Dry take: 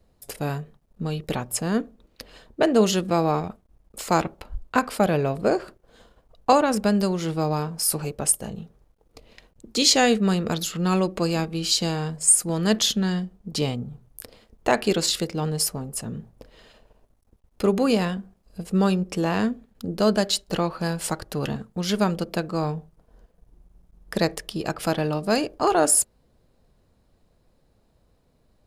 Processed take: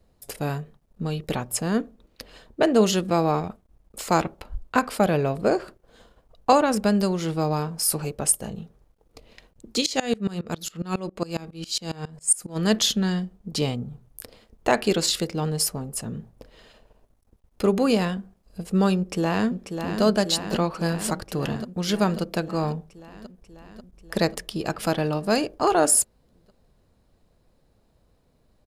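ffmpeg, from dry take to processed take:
ffmpeg -i in.wav -filter_complex "[0:a]asplit=3[link_01][link_02][link_03];[link_01]afade=type=out:start_time=9.8:duration=0.02[link_04];[link_02]aeval=exprs='val(0)*pow(10,-23*if(lt(mod(-7.3*n/s,1),2*abs(-7.3)/1000),1-mod(-7.3*n/s,1)/(2*abs(-7.3)/1000),(mod(-7.3*n/s,1)-2*abs(-7.3)/1000)/(1-2*abs(-7.3)/1000))/20)':channel_layout=same,afade=type=in:start_time=9.8:duration=0.02,afade=type=out:start_time=12.55:duration=0.02[link_05];[link_03]afade=type=in:start_time=12.55:duration=0.02[link_06];[link_04][link_05][link_06]amix=inputs=3:normalize=0,asplit=2[link_07][link_08];[link_08]afade=type=in:start_time=18.97:duration=0.01,afade=type=out:start_time=20.02:duration=0.01,aecho=0:1:540|1080|1620|2160|2700|3240|3780|4320|4860|5400|5940|6480:0.446684|0.335013|0.25126|0.188445|0.141333|0.106|0.0795001|0.0596251|0.0447188|0.0335391|0.0251543|0.0188657[link_09];[link_07][link_09]amix=inputs=2:normalize=0" out.wav

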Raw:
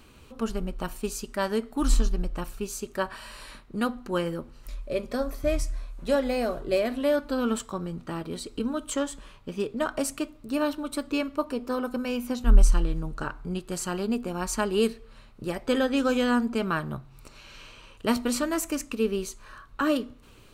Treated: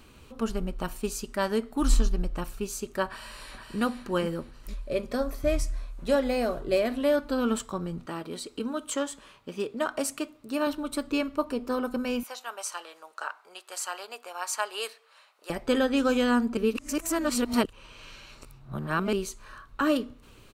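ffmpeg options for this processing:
ffmpeg -i in.wav -filter_complex "[0:a]asplit=2[link_01][link_02];[link_02]afade=type=in:start_time=3.06:duration=0.01,afade=type=out:start_time=3.79:duration=0.01,aecho=0:1:470|940|1410|1880:0.530884|0.18581|0.0650333|0.0227617[link_03];[link_01][link_03]amix=inputs=2:normalize=0,asettb=1/sr,asplit=3[link_04][link_05][link_06];[link_04]atrim=end=8.064[link_07];[link_05]atrim=start=8.06:end=10.67,asetpts=PTS-STARTPTS,afade=type=in:duration=0.004:curve=qsin,afade=type=out:start_time=2.606:duration=0.004:curve=qsin,highpass=frequency=280:poles=1[link_08];[link_06]atrim=start=10.666[link_09];[link_07][link_08]acrossfade=duration=0.004:curve1=hsin:curve2=qsin[link_10];[link_10][link_09]acrossfade=duration=0.004:curve1=qsin:curve2=hsin,asettb=1/sr,asplit=3[link_11][link_12][link_13];[link_11]atrim=end=12.234[link_14];[link_12]atrim=start=12.23:end=15.5,asetpts=PTS-STARTPTS,afade=type=in:duration=0.004:curve=qsin,afade=type=out:start_time=3.266:duration=0.004:curve=qsin,highpass=frequency=640:width=0.5412,highpass=frequency=640:width=1.3066[link_15];[link_13]atrim=start=15.496[link_16];[link_14][link_15]acrossfade=duration=0.004:curve1=hsin:curve2=qsin[link_17];[link_17][link_16]acrossfade=duration=0.004:curve1=qsin:curve2=hsin,asplit=3[link_18][link_19][link_20];[link_18]atrim=end=16.572[link_21];[link_19]atrim=start=16.568:end=19.132,asetpts=PTS-STARTPTS,areverse[link_22];[link_20]atrim=start=19.128[link_23];[link_21][link_22]acrossfade=duration=0.004:curve1=hsin:curve2=hsin[link_24];[link_24][link_23]acrossfade=duration=0.004:curve1=hsin:curve2=hsin" out.wav

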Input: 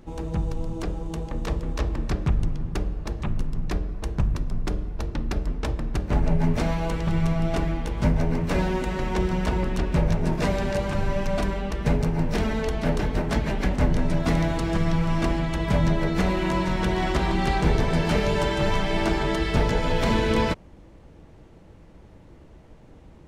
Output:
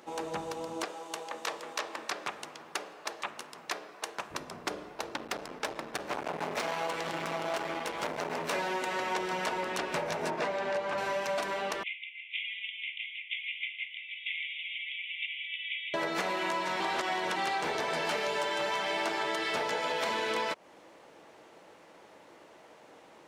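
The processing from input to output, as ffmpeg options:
ffmpeg -i in.wav -filter_complex "[0:a]asettb=1/sr,asplit=3[link_01][link_02][link_03];[link_01]atrim=end=0.844[link_04];[link_02]atrim=start=0.84:end=4.31,asetpts=PTS-STARTPTS,afade=type=in:duration=0.004:curve=qsin,afade=type=out:start_time=3.466:duration=0.004:curve=qsin,highpass=frequency=720:poles=1[link_05];[link_03]atrim=start=4.306[link_06];[link_04][link_05]acrossfade=duration=0.004:curve1=hsin:curve2=qsin[link_07];[link_07][link_06]acrossfade=duration=0.004:curve1=qsin:curve2=hsin,asettb=1/sr,asplit=3[link_08][link_09][link_10];[link_08]atrim=end=4.894[link_11];[link_09]atrim=start=4.89:end=8.53,asetpts=PTS-STARTPTS,afade=type=in:duration=0.004:curve=qsin,afade=type=out:start_time=3.636:duration=0.004:curve=qsin,asoftclip=type=hard:threshold=-24.5dB[link_12];[link_10]atrim=start=8.526[link_13];[link_11][link_12]acrossfade=duration=0.004:curve1=hsin:curve2=qsin[link_14];[link_14][link_13]acrossfade=duration=0.004:curve1=qsin:curve2=hsin,asettb=1/sr,asplit=3[link_15][link_16][link_17];[link_15]atrim=end=10.304[link_18];[link_16]atrim=start=10.3:end=10.98,asetpts=PTS-STARTPTS,afade=type=in:duration=0.004:curve=qsin,afade=type=out:start_time=0.676:duration=0.004:curve=qsin,aemphasis=mode=reproduction:type=75kf[link_19];[link_17]atrim=start=10.976[link_20];[link_18][link_19]acrossfade=duration=0.004:curve1=hsin:curve2=qsin[link_21];[link_21][link_20]acrossfade=duration=0.004:curve1=qsin:curve2=hsin,asettb=1/sr,asplit=3[link_22][link_23][link_24];[link_22]atrim=end=11.834[link_25];[link_23]atrim=start=11.83:end=15.94,asetpts=PTS-STARTPTS,afade=type=in:duration=0.004:curve=qsin,afade=type=out:start_time=4.106:duration=0.004:curve=qsin,asuperpass=centerf=2700:order=20:qfactor=1.8[link_26];[link_24]atrim=start=15.936[link_27];[link_25][link_26]acrossfade=duration=0.004:curve1=hsin:curve2=qsin[link_28];[link_28][link_27]acrossfade=duration=0.004:curve1=qsin:curve2=hsin,asplit=3[link_29][link_30][link_31];[link_29]atrim=end=16.802[link_32];[link_30]atrim=start=16.798:end=17.362,asetpts=PTS-STARTPTS,areverse[link_33];[link_31]atrim=start=17.358[link_34];[link_32][link_33]acrossfade=duration=0.004:curve1=hsin:curve2=hsin[link_35];[link_35][link_34]acrossfade=duration=0.004:curve1=hsin:curve2=hsin,highpass=590,acompressor=threshold=-34dB:ratio=6,volume=5dB" out.wav

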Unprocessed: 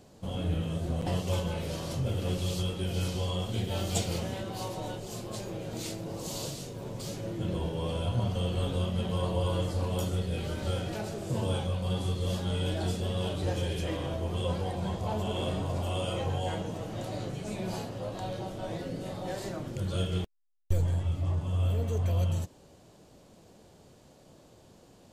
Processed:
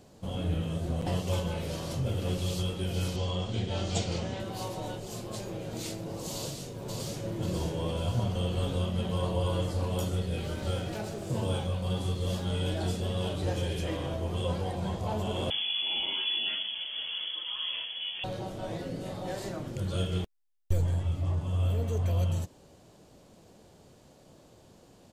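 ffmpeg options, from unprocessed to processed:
ffmpeg -i in.wav -filter_complex "[0:a]asettb=1/sr,asplit=3[link_01][link_02][link_03];[link_01]atrim=end=3.164[link_04];[link_02]atrim=start=3.16:end=4.4,asetpts=PTS-STARTPTS,afade=type=in:duration=0.004:curve=qsin,afade=type=out:start_time=1.236:duration=0.004:curve=qsin,lowpass=frequency=7100:width=0.5412,lowpass=frequency=7100:width=1.3066[link_05];[link_03]atrim=start=4.396[link_06];[link_04][link_05]acrossfade=duration=0.004:curve1=hsin:curve2=qsin[link_07];[link_07][link_06]acrossfade=duration=0.004:curve1=qsin:curve2=hsin,asplit=2[link_08][link_09];[link_09]afade=type=in:start_time=6.34:duration=0.01,afade=type=out:start_time=7.36:duration=0.01,aecho=0:1:540|1080|1620|2160|2700|3240:0.630957|0.315479|0.157739|0.0788697|0.0394348|0.0197174[link_10];[link_08][link_10]amix=inputs=2:normalize=0,asettb=1/sr,asplit=3[link_11][link_12][link_13];[link_11]atrim=end=10.414[link_14];[link_12]atrim=start=10.41:end=12.53,asetpts=PTS-STARTPTS,afade=type=in:duration=0.004:curve=qsin,afade=type=out:start_time=2.116:duration=0.004:curve=qsin,aeval=exprs='sgn(val(0))*max(abs(val(0))-0.00119,0)':channel_layout=same[link_15];[link_13]atrim=start=12.526[link_16];[link_14][link_15]acrossfade=duration=0.004:curve1=hsin:curve2=qsin[link_17];[link_17][link_16]acrossfade=duration=0.004:curve1=qsin:curve2=hsin,asettb=1/sr,asplit=3[link_18][link_19][link_20];[link_18]atrim=end=15.504[link_21];[link_19]atrim=start=15.5:end=18.24,asetpts=PTS-STARTPTS,afade=type=in:duration=0.004:curve=qsin,afade=type=out:start_time=2.736:duration=0.004:curve=qsin,lowpass=frequency=3000:width_type=q:width=0.5098,lowpass=frequency=3000:width_type=q:width=0.6013,lowpass=frequency=3000:width_type=q:width=0.9,lowpass=frequency=3000:width_type=q:width=2.563,afreqshift=-3500[link_22];[link_20]atrim=start=18.236[link_23];[link_21][link_22]acrossfade=duration=0.004:curve1=hsin:curve2=qsin[link_24];[link_24][link_23]acrossfade=duration=0.004:curve1=qsin:curve2=hsin" out.wav

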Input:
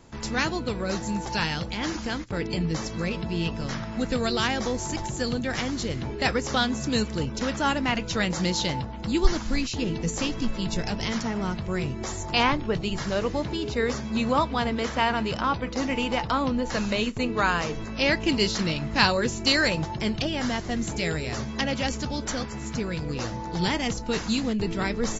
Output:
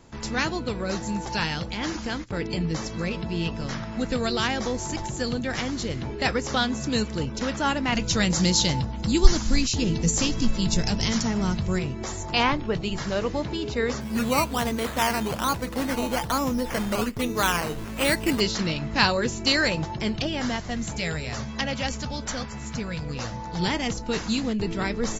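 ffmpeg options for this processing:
ffmpeg -i in.wav -filter_complex "[0:a]asettb=1/sr,asplit=3[link_01][link_02][link_03];[link_01]atrim=end=7.924[link_04];[link_02]atrim=start=7.92:end=11.79,asetpts=PTS-STARTPTS,afade=type=in:duration=0.004:curve=qsin,afade=type=out:start_time=3.866:duration=0.004:curve=qsin,bass=frequency=250:gain=6,treble=frequency=4000:gain=10[link_05];[link_03]atrim=start=11.786[link_06];[link_04][link_05]acrossfade=duration=0.004:curve1=hsin:curve2=qsin[link_07];[link_07][link_06]acrossfade=duration=0.004:curve1=qsin:curve2=hsin,asplit=3[link_08][link_09][link_10];[link_08]afade=type=out:start_time=14:duration=0.02[link_11];[link_09]acrusher=samples=10:mix=1:aa=0.000001:lfo=1:lforange=6:lforate=1.2,afade=type=in:start_time=14:duration=0.02,afade=type=out:start_time=18.39:duration=0.02[link_12];[link_10]afade=type=in:start_time=18.39:duration=0.02[link_13];[link_11][link_12][link_13]amix=inputs=3:normalize=0,asettb=1/sr,asplit=3[link_14][link_15][link_16];[link_14]atrim=end=20.564[link_17];[link_15]atrim=start=20.56:end=23.58,asetpts=PTS-STARTPTS,afade=type=in:duration=0.004:curve=qsin,afade=type=out:start_time=3.016:duration=0.004:curve=qsin,equalizer=frequency=350:width=2.4:gain=-9[link_18];[link_16]atrim=start=23.576[link_19];[link_17][link_18]acrossfade=duration=0.004:curve1=hsin:curve2=qsin[link_20];[link_20][link_19]acrossfade=duration=0.004:curve1=qsin:curve2=hsin" out.wav

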